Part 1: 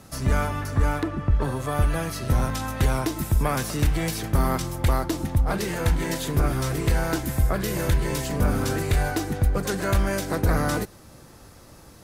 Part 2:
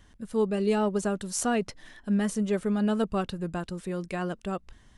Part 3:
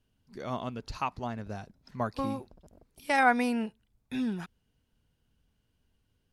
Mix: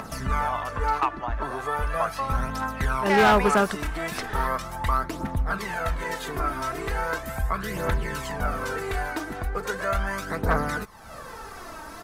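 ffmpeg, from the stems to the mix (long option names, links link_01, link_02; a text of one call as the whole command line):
ffmpeg -i stem1.wav -i stem2.wav -i stem3.wav -filter_complex "[0:a]aecho=1:1:4.5:0.36,aphaser=in_gain=1:out_gain=1:delay=3.3:decay=0.54:speed=0.38:type=triangular,volume=-11.5dB[link_01];[1:a]adelay=2500,volume=2dB[link_02];[2:a]highpass=540,volume=-4.5dB,asplit=2[link_03][link_04];[link_04]apad=whole_len=329583[link_05];[link_02][link_05]sidechaingate=range=-33dB:threshold=-57dB:ratio=16:detection=peak[link_06];[link_01][link_06][link_03]amix=inputs=3:normalize=0,equalizer=frequency=1200:width_type=o:width=2.2:gain=13.5,acompressor=mode=upward:threshold=-27dB:ratio=2.5,asoftclip=type=hard:threshold=-13.5dB" out.wav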